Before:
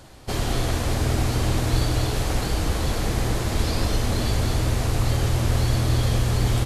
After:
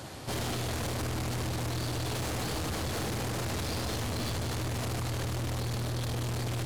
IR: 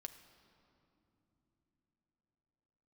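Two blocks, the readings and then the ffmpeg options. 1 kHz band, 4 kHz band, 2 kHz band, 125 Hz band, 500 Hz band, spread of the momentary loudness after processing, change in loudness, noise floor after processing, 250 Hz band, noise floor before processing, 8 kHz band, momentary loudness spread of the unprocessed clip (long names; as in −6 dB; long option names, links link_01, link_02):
−7.0 dB, −7.0 dB, −6.5 dB, −10.5 dB, −8.0 dB, 0 LU, −9.5 dB, −34 dBFS, −8.5 dB, −27 dBFS, −6.5 dB, 3 LU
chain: -af "highpass=frequency=78:width=0.5412,highpass=frequency=78:width=1.3066,alimiter=limit=-22.5dB:level=0:latency=1:release=61,aeval=exprs='(tanh(70.8*val(0)+0.25)-tanh(0.25))/70.8':channel_layout=same,volume=6dB"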